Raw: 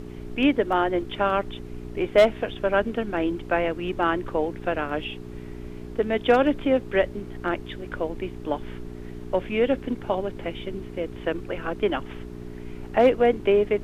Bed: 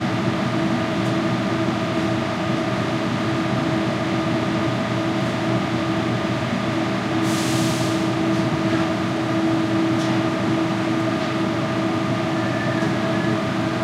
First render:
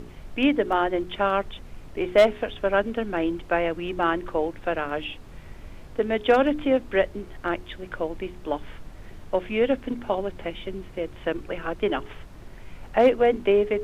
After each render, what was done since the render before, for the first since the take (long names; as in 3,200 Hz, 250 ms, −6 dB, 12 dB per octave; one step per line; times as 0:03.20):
hum removal 60 Hz, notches 7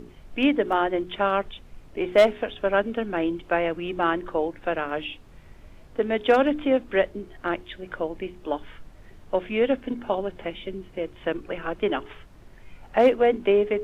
noise reduction from a noise print 6 dB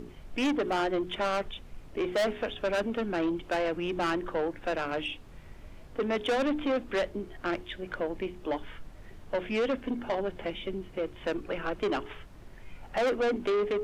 soft clipping −24 dBFS, distortion −6 dB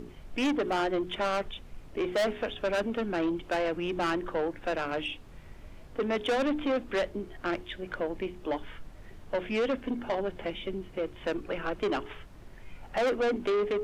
no processing that can be heard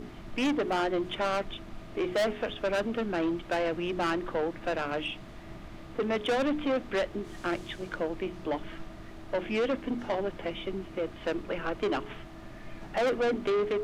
mix in bed −26.5 dB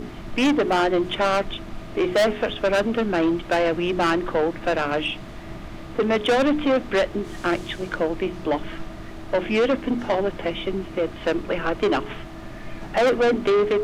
level +8.5 dB